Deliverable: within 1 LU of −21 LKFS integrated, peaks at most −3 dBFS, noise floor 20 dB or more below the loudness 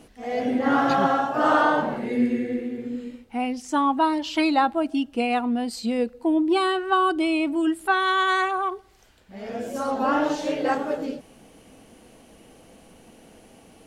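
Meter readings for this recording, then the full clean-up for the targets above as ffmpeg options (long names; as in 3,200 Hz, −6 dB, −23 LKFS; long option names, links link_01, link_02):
integrated loudness −23.5 LKFS; sample peak −7.0 dBFS; target loudness −21.0 LKFS
→ -af "volume=2.5dB"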